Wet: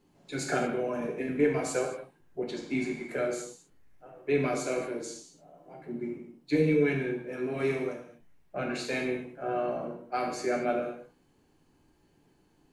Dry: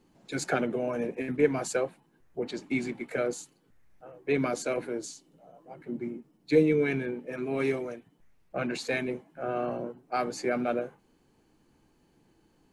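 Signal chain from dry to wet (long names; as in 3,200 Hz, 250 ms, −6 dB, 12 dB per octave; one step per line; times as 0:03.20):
reverb whose tail is shaped and stops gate 260 ms falling, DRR −0.5 dB
level −3.5 dB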